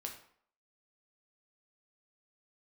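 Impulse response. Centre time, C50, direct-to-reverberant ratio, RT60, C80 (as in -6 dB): 20 ms, 8.0 dB, 1.5 dB, 0.60 s, 11.5 dB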